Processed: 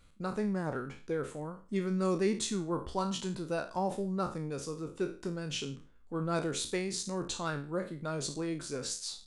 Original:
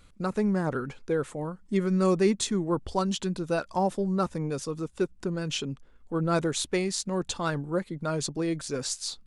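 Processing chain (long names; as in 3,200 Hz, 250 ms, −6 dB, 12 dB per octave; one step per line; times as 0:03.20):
peak hold with a decay on every bin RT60 0.37 s
level −7 dB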